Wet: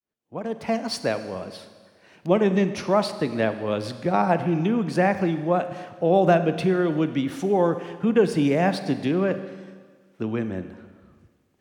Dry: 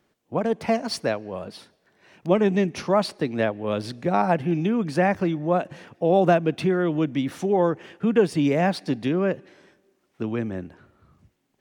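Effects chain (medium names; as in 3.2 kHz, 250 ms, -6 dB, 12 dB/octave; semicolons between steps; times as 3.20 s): fade-in on the opening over 0.94 s; Schroeder reverb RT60 1.6 s, combs from 32 ms, DRR 10.5 dB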